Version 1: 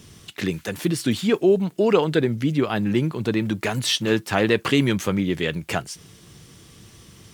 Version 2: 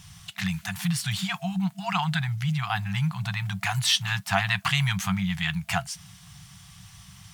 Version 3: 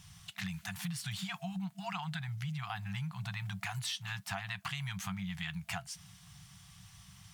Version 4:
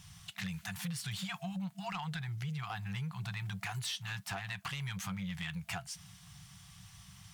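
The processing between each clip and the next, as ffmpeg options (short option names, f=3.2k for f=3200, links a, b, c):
-af "afftfilt=real='re*(1-between(b*sr/4096,200,670))':imag='im*(1-between(b*sr/4096,200,670))':win_size=4096:overlap=0.75"
-af "acompressor=threshold=-28dB:ratio=6,volume=-7.5dB"
-af "asoftclip=type=tanh:threshold=-31dB,volume=1dB"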